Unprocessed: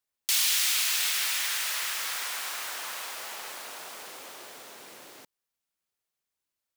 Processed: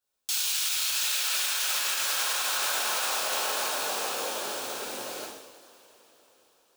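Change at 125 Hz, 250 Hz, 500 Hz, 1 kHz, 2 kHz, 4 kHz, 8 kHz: n/a, +10.5 dB, +12.0 dB, +7.5 dB, +1.5 dB, +1.5 dB, +1.5 dB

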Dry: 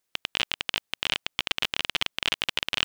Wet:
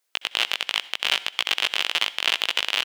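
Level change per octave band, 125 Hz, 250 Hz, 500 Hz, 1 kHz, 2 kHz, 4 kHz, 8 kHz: under -15 dB, -4.5 dB, +3.0 dB, +4.5 dB, +4.5 dB, +5.0 dB, +4.5 dB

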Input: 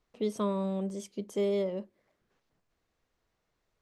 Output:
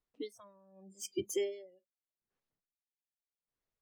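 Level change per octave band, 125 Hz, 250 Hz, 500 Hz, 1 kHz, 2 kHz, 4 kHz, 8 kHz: n/a, -13.0 dB, -8.0 dB, under -20 dB, -3.0 dB, -1.5 dB, +5.0 dB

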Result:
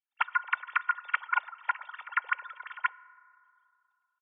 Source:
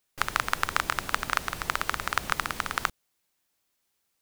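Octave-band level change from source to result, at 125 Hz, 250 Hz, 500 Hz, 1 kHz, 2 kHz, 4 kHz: under -40 dB, under -40 dB, under -20 dB, -2.0 dB, -1.0 dB, -14.5 dB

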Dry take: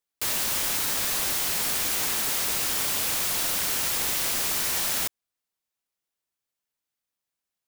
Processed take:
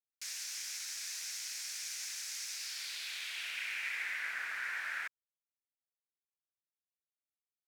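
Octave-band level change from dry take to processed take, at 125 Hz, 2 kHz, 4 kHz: under -40 dB, -5.0 dB, -12.0 dB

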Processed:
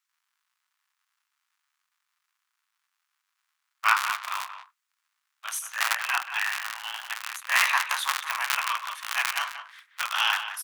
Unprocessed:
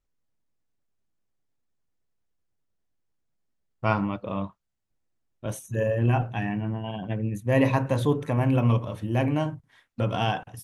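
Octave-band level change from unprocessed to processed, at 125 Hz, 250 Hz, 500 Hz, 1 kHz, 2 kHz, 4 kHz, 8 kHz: under -40 dB, under -40 dB, -22.5 dB, +3.0 dB, +10.5 dB, +12.0 dB, +14.0 dB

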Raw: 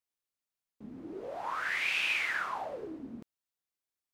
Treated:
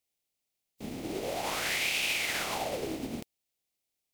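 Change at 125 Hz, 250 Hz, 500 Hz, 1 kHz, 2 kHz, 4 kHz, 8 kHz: n/a, +6.0 dB, +6.0 dB, +0.5 dB, -1.0 dB, +6.0 dB, +14.5 dB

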